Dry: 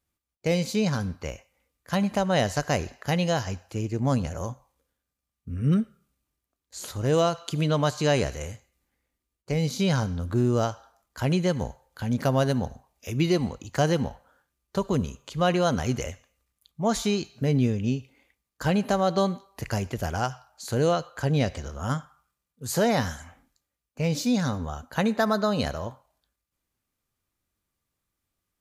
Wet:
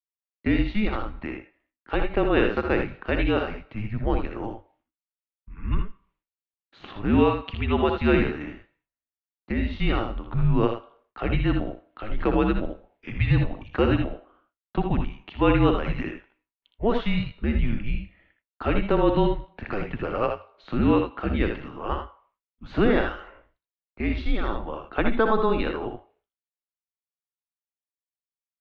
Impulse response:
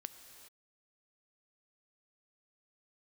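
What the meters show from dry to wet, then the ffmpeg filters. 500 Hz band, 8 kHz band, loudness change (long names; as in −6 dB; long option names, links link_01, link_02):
+1.0 dB, below −30 dB, +1.0 dB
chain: -filter_complex "[0:a]agate=range=-33dB:threshold=-59dB:ratio=3:detection=peak,highpass=140,asplit=2[link_01][link_02];[link_02]aecho=0:1:62|79:0.398|0.422[link_03];[link_01][link_03]amix=inputs=2:normalize=0,highpass=frequency=180:width_type=q:width=0.5412,highpass=frequency=180:width_type=q:width=1.307,lowpass=frequency=3300:width_type=q:width=0.5176,lowpass=frequency=3300:width_type=q:width=0.7071,lowpass=frequency=3300:width_type=q:width=1.932,afreqshift=-220,volume=3dB"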